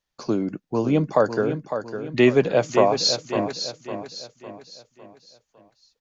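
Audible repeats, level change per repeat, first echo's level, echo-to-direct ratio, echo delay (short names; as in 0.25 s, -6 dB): 4, -7.5 dB, -9.0 dB, -8.0 dB, 0.555 s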